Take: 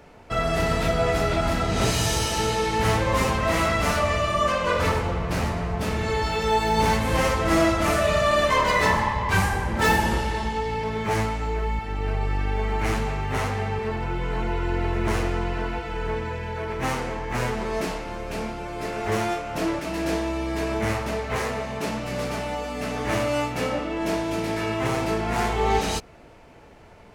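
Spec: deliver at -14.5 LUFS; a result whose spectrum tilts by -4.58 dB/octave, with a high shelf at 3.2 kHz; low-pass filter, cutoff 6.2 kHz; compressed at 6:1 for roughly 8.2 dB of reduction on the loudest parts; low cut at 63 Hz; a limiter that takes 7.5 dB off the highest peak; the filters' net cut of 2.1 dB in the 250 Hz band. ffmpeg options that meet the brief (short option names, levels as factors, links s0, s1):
-af "highpass=63,lowpass=6200,equalizer=f=250:t=o:g=-3,highshelf=f=3200:g=5.5,acompressor=threshold=0.0562:ratio=6,volume=7.08,alimiter=limit=0.531:level=0:latency=1"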